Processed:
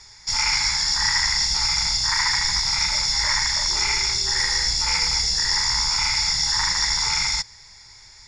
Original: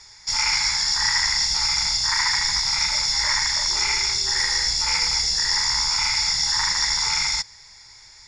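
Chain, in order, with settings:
low-shelf EQ 290 Hz +5 dB

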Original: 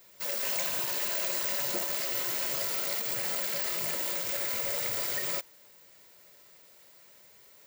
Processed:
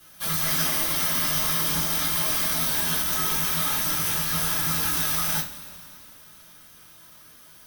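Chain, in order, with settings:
frequency shifter −400 Hz
formants moved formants −3 semitones
coupled-rooms reverb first 0.24 s, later 2.8 s, from −22 dB, DRR −7 dB

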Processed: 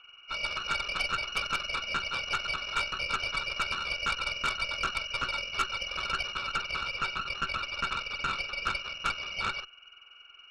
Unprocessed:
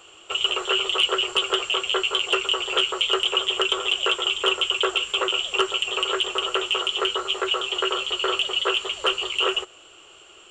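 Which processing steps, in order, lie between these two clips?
hearing-aid frequency compression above 2,100 Hz 4 to 1
pair of resonant band-passes 2,000 Hz, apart 0.94 octaves
harmonic generator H 6 −15 dB, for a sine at −17 dBFS

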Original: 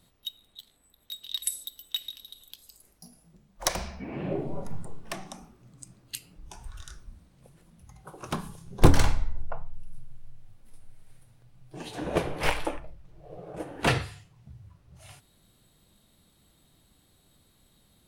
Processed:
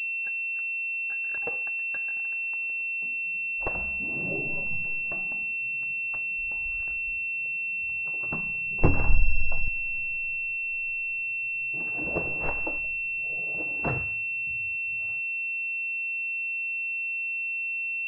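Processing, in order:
0:09.09–0:09.68: low-shelf EQ 150 Hz +12 dB
switching amplifier with a slow clock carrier 2,700 Hz
level −4.5 dB

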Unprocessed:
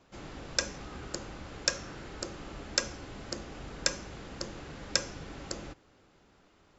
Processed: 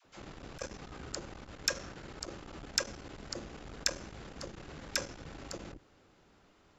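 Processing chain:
all-pass dispersion lows, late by 52 ms, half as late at 540 Hz
saturating transformer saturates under 2,400 Hz
level −1 dB

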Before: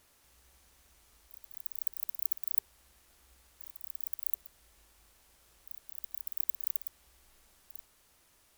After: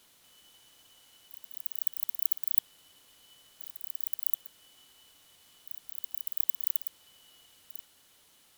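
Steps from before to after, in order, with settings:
band-splitting scrambler in four parts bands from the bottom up 2413
level +4 dB

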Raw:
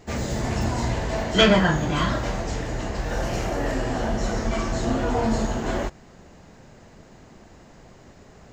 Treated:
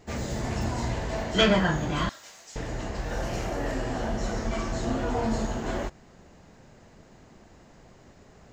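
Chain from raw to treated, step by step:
0:02.09–0:02.56: first difference
level −4.5 dB

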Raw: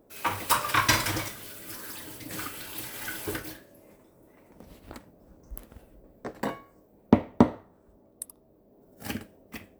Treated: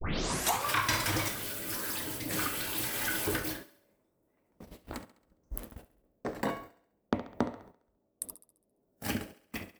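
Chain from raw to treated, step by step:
turntable start at the beginning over 0.67 s
noise gate −48 dBFS, range −22 dB
downward compressor 4 to 1, threshold −31 dBFS, peak gain reduction 16 dB
feedback echo with a high-pass in the loop 68 ms, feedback 48%, high-pass 160 Hz, level −16.5 dB
transient designer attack −4 dB, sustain 0 dB
level +5 dB

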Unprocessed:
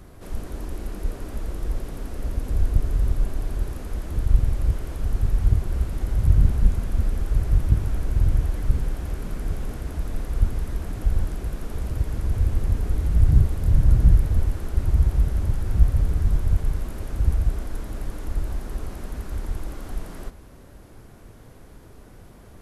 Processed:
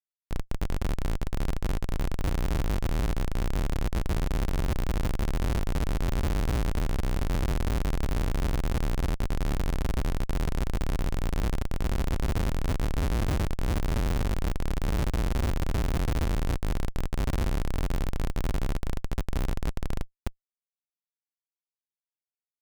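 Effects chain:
treble cut that deepens with the level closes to 1,900 Hz, closed at −14.5 dBFS
comparator with hysteresis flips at −26.5 dBFS
level −4 dB

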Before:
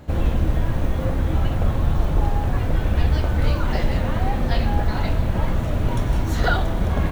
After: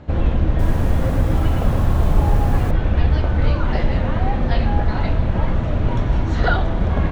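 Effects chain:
high-frequency loss of the air 150 metres
0:00.48–0:02.71: feedback echo at a low word length 111 ms, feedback 35%, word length 7 bits, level −3 dB
level +2.5 dB

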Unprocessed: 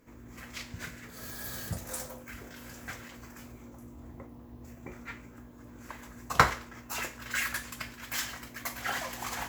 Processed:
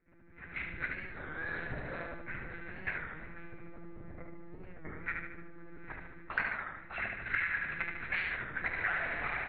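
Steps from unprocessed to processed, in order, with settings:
phaser with its sweep stopped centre 660 Hz, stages 8
one-pitch LPC vocoder at 8 kHz 170 Hz
dynamic equaliser 2,400 Hz, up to +4 dB, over −49 dBFS, Q 1.2
automatic gain control gain up to 14 dB
tilt shelving filter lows −4 dB, about 1,300 Hz
on a send: repeating echo 74 ms, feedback 49%, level −5 dB
on the sum: downward compressor 6 to 1, threshold −22 dBFS, peak gain reduction 11.5 dB
wow of a warped record 33 1/3 rpm, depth 160 cents
level −8 dB

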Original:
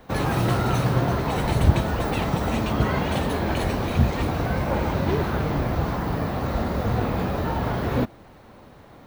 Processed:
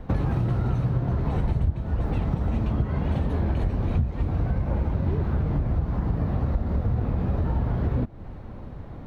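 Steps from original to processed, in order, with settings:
RIAA equalisation playback
downward compressor 8 to 1, threshold −21 dBFS, peak gain reduction 24 dB

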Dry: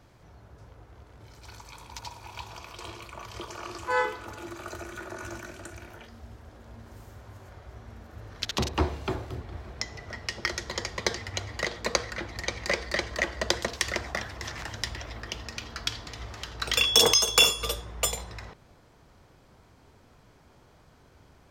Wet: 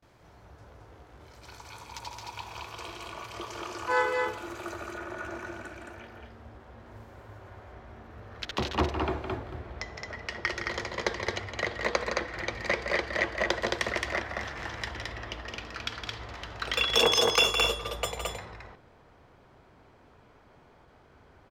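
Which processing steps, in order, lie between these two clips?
noise gate with hold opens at −49 dBFS
bass and treble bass −5 dB, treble −3 dB, from 0:04.71 treble −13 dB
loudspeakers that aren't time-aligned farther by 56 metres −8 dB, 75 metres −3 dB

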